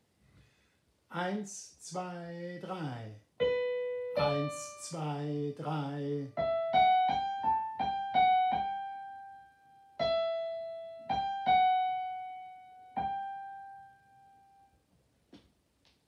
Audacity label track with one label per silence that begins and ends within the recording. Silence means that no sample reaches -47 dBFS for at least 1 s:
13.830000	15.330000	silence